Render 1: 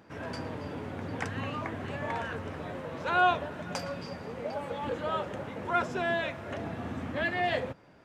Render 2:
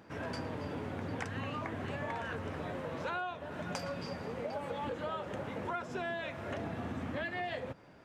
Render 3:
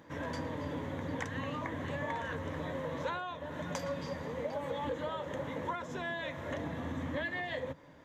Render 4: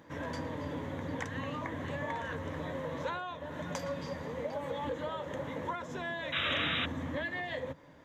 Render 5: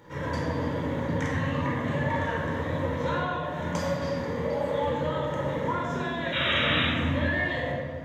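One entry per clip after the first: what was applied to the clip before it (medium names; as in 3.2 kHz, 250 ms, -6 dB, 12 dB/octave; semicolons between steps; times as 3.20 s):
compression 16:1, threshold -34 dBFS, peak gain reduction 16.5 dB
rippled EQ curve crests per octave 1.1, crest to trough 8 dB
painted sound noise, 6.32–6.86 s, 1.1–3.9 kHz -33 dBFS
simulated room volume 1700 m³, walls mixed, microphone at 4.5 m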